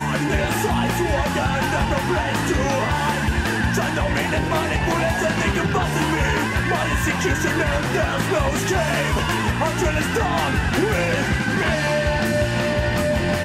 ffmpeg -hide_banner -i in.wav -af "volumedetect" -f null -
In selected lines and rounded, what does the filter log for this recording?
mean_volume: -20.4 dB
max_volume: -8.3 dB